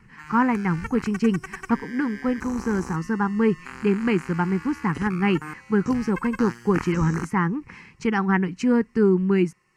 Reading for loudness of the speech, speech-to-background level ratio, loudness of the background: −23.5 LKFS, 14.5 dB, −38.0 LKFS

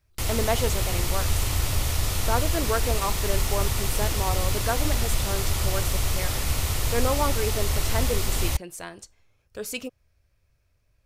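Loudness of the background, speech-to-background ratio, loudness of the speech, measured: −26.5 LKFS, −5.0 dB, −31.5 LKFS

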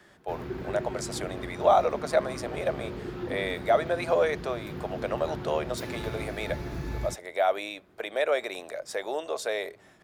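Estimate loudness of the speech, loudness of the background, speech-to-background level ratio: −30.0 LKFS, −38.0 LKFS, 8.0 dB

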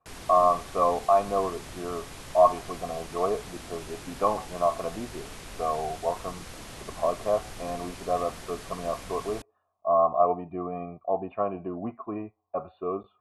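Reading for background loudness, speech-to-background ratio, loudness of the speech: −42.5 LKFS, 14.0 dB, −28.5 LKFS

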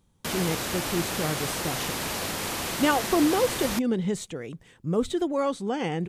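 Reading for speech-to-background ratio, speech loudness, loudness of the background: 1.5 dB, −28.0 LKFS, −29.5 LKFS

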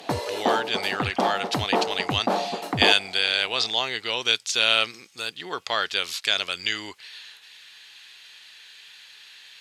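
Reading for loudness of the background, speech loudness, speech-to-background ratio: −27.5 LKFS, −24.0 LKFS, 3.5 dB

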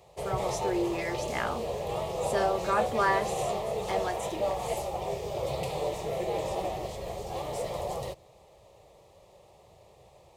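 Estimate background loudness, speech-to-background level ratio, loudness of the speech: −33.0 LKFS, 1.0 dB, −32.0 LKFS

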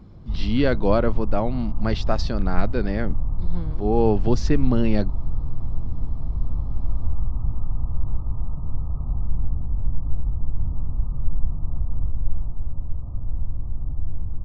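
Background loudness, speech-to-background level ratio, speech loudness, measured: −30.5 LKFS, 6.0 dB, −24.5 LKFS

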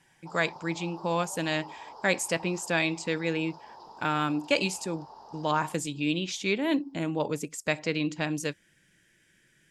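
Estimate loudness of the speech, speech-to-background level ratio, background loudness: −29.5 LKFS, 18.5 dB, −48.0 LKFS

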